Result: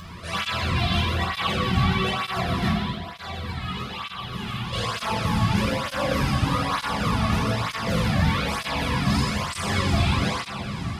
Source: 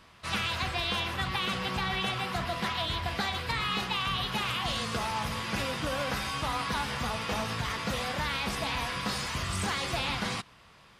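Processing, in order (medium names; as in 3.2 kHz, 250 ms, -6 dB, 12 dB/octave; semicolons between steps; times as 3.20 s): bass shelf 290 Hz +10 dB; upward compressor, threshold -34 dBFS; bass shelf 100 Hz +8 dB; echo that smears into a reverb 517 ms, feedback 43%, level -11 dB; 2.67–4.73 s: compression, threshold -31 dBFS, peak gain reduction 12.5 dB; de-hum 48.57 Hz, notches 32; reverberation RT60 1.6 s, pre-delay 10 ms, DRR -3.5 dB; cancelling through-zero flanger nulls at 1.1 Hz, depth 2.2 ms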